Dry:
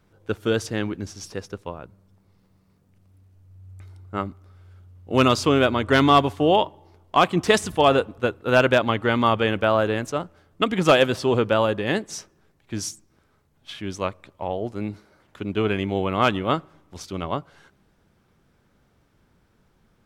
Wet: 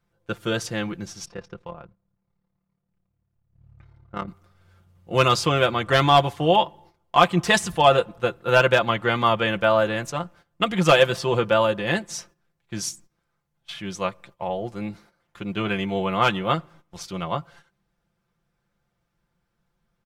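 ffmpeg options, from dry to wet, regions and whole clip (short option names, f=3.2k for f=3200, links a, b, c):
-filter_complex "[0:a]asettb=1/sr,asplit=3[a][b][c];[a]atrim=end=1.254[d];[b]atrim=start=1.25:end=4.28,asetpts=PTS-STARTPTS,afade=t=in:d=0.004:c=qsin,afade=t=out:st=3.026:d=0.004:c=qsin,tremolo=f=36:d=0.75,adynamicsmooth=sensitivity=3:basefreq=3.2k[e];[c]atrim=start=4.276[f];[d][e]acrossfade=d=0.004:c1=hsin:c2=qsin[g];[g][f]acrossfade=d=0.004:c1=qsin:c2=hsin,agate=range=-12dB:threshold=-49dB:ratio=16:detection=peak,equalizer=f=310:t=o:w=0.91:g=-7,aecho=1:1:5.8:0.67"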